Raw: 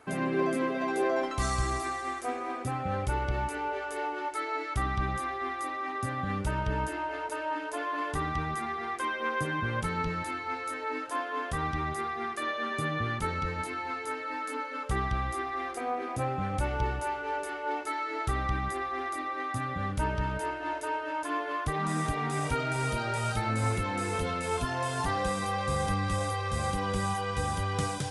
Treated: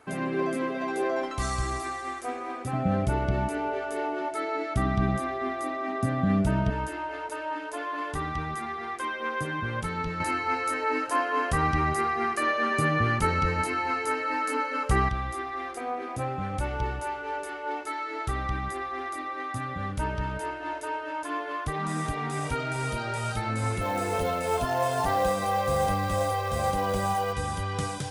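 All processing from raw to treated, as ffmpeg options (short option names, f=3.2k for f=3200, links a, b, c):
-filter_complex "[0:a]asettb=1/sr,asplit=3[a][b][c];[a]atrim=end=2.734[d];[b]atrim=start=2.73:end=6.7,asetpts=PTS-STARTPTS,afade=t=in:d=0.004:c=qsin,afade=t=out:st=3.966:d=0.004:c=qsin,equalizer=f=200:w=0.89:g=13,bandreject=f=1k:w=14,aeval=exprs='val(0)+0.0178*sin(2*PI*660*n/s)':c=same[e];[c]atrim=start=6.696[f];[d][e]acrossfade=d=0.004:c1=hsin:c2=qsin[g];[g][f]acrossfade=d=0.004:c1=qsin:c2=hsin,asettb=1/sr,asplit=3[h][i][j];[h]atrim=end=10.204[k];[i]atrim=start=10.2:end=15.09,asetpts=PTS-STARTPTS,afade=t=in:d=0.004:c=qsin,afade=t=out:st=4.886:d=0.004:c=qsin,acontrast=75,bandreject=f=3.5k:w=8.8[l];[j]atrim=start=15.086[m];[k][l]acrossfade=d=0.004:c1=hsin:c2=qsin[n];[n][m]acrossfade=d=0.004:c1=qsin:c2=hsin,asettb=1/sr,asplit=3[o][p][q];[o]atrim=end=23.814[r];[p]atrim=start=23.81:end=27.33,asetpts=PTS-STARTPTS,afade=t=in:d=0.004:c=qsin,afade=t=out:st=3.516:d=0.004:c=qsin,equalizer=f=640:t=o:w=0.8:g=11.5,acrusher=bits=5:mode=log:mix=0:aa=0.000001[s];[q]atrim=start=27.326[t];[r][s]acrossfade=d=0.004:c1=hsin:c2=qsin[u];[u][t]acrossfade=d=0.004:c1=qsin:c2=hsin"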